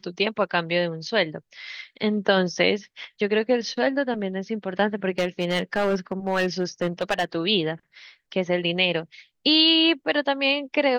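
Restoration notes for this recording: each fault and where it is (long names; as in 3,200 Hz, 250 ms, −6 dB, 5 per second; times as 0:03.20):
0:05.10–0:07.25: clipping −17.5 dBFS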